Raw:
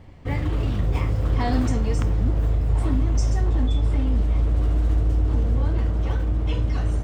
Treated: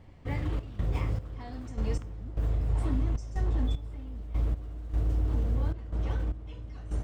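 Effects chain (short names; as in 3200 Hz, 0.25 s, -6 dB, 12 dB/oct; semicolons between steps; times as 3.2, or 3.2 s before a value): 3.64–5.72 requantised 10-bit, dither none; step gate "xxx.xx...x..x" 76 bpm -12 dB; gain -7 dB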